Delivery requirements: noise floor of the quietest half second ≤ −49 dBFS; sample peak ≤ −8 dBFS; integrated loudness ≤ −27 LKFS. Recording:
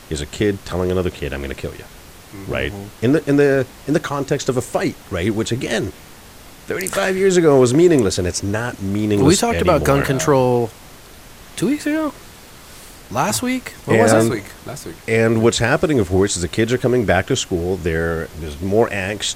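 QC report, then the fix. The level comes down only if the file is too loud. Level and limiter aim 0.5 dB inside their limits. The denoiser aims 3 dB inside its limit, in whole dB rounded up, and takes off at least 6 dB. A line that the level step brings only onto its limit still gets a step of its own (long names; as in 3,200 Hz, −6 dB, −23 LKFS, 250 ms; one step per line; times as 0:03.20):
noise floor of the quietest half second −41 dBFS: out of spec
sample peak −2.0 dBFS: out of spec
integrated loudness −18.0 LKFS: out of spec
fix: level −9.5 dB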